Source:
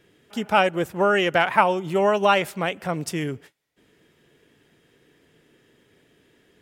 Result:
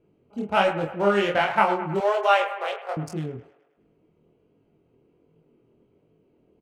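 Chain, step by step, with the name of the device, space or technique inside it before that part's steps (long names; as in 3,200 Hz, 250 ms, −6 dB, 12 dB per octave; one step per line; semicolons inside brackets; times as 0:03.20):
adaptive Wiener filter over 25 samples
double-tracked vocal (double-tracking delay 25 ms −5.5 dB; chorus effect 1.3 Hz, delay 18.5 ms, depth 6.8 ms)
0:02.00–0:02.97: Butterworth high-pass 390 Hz 96 dB per octave
delay with a band-pass on its return 105 ms, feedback 55%, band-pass 1,200 Hz, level −10 dB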